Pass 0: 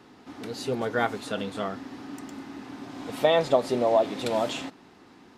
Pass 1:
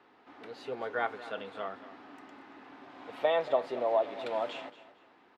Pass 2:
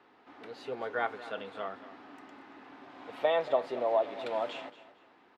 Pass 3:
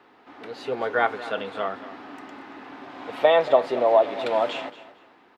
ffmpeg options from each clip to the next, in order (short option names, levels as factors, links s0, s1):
-filter_complex "[0:a]acrossover=split=400 3400:gain=0.178 1 0.1[s0][s1][s2];[s0][s1][s2]amix=inputs=3:normalize=0,aecho=1:1:230|460|690:0.168|0.0436|0.0113,volume=0.562"
-af anull
-af "dynaudnorm=f=120:g=9:m=1.5,volume=2.11"